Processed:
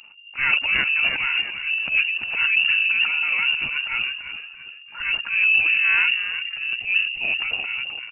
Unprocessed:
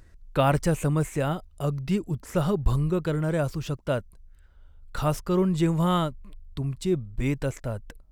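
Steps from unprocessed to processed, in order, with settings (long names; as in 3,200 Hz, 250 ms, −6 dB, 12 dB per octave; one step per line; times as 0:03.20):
hollow resonant body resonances 200/1,400 Hz, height 7 dB, ringing for 45 ms
on a send: echo with shifted repeats 335 ms, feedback 47%, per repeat −75 Hz, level −11 dB
on the sum: transient designer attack −10 dB, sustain +10 dB
pitch-shifted copies added −4 semitones −16 dB, +5 semitones −10 dB
voice inversion scrambler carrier 2,800 Hz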